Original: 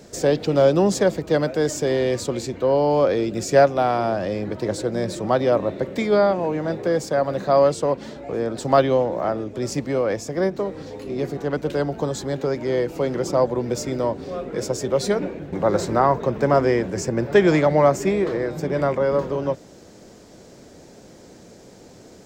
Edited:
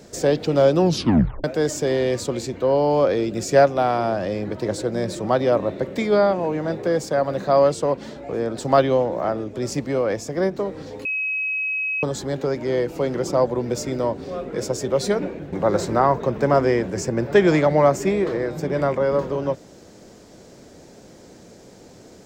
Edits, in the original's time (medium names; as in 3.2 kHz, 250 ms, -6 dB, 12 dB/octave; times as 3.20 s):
0.80 s: tape stop 0.64 s
11.05–12.03 s: bleep 2.55 kHz -21.5 dBFS